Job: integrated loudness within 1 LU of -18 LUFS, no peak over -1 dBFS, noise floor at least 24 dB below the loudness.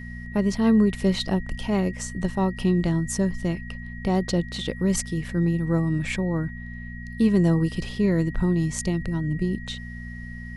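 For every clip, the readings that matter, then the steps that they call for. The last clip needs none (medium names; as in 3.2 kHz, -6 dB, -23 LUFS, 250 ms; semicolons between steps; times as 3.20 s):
hum 60 Hz; highest harmonic 240 Hz; hum level -35 dBFS; steady tone 1.9 kHz; tone level -41 dBFS; loudness -24.5 LUFS; peak level -9.0 dBFS; loudness target -18.0 LUFS
-> de-hum 60 Hz, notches 4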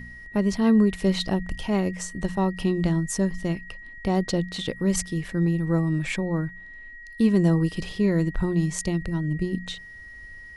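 hum not found; steady tone 1.9 kHz; tone level -41 dBFS
-> band-stop 1.9 kHz, Q 30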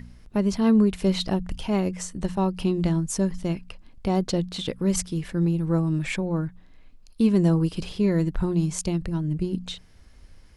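steady tone not found; loudness -25.0 LUFS; peak level -9.5 dBFS; loudness target -18.0 LUFS
-> trim +7 dB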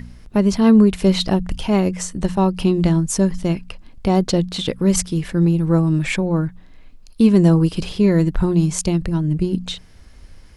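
loudness -18.0 LUFS; peak level -2.5 dBFS; noise floor -44 dBFS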